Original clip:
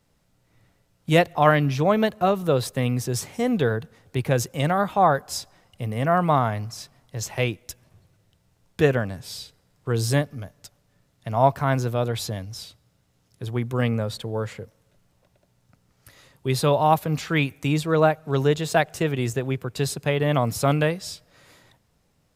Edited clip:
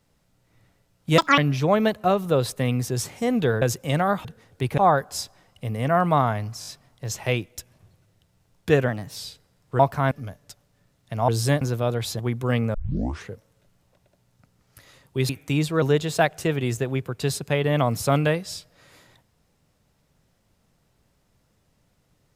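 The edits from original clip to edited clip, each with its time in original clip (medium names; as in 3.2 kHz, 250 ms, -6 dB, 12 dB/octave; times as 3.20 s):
1.18–1.55 s: speed 187%
3.79–4.32 s: move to 4.95 s
6.78 s: stutter 0.02 s, 4 plays
8.99–9.30 s: speed 109%
9.93–10.26 s: swap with 11.43–11.75 s
12.33–13.49 s: delete
14.04 s: tape start 0.57 s
16.59–17.44 s: delete
17.97–18.38 s: delete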